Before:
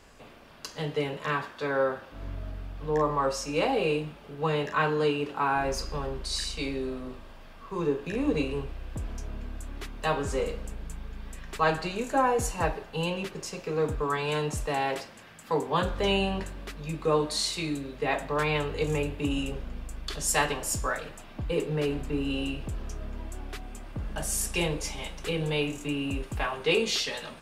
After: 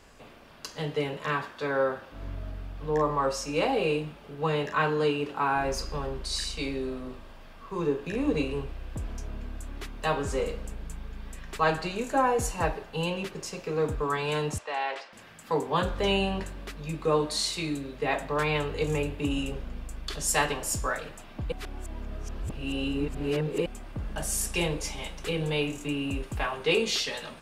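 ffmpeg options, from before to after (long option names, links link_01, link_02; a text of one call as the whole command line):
ffmpeg -i in.wav -filter_complex "[0:a]asettb=1/sr,asplit=3[link_01][link_02][link_03];[link_01]atrim=end=14.584[link_04];[link_02]atrim=start=14.58:end=15.13,asetpts=PTS-STARTPTS,afade=type=in:duration=0.004:curve=qsin,afade=type=out:start_time=0.546:duration=0.004:curve=qsin,highpass=650,lowpass=4100[link_05];[link_03]atrim=start=15.126[link_06];[link_04][link_05]acrossfade=duration=0.004:curve1=hsin:curve2=qsin[link_07];[link_07][link_06]acrossfade=duration=0.004:curve1=qsin:curve2=hsin,asplit=3[link_08][link_09][link_10];[link_08]atrim=end=21.522[link_11];[link_09]atrim=start=21.518:end=23.662,asetpts=PTS-STARTPTS,areverse[link_12];[link_10]atrim=start=23.658[link_13];[link_11][link_12]acrossfade=duration=0.004:curve1=hsin:curve2=hsin[link_14];[link_14][link_13]acrossfade=duration=0.004:curve1=hsin:curve2=hsin" out.wav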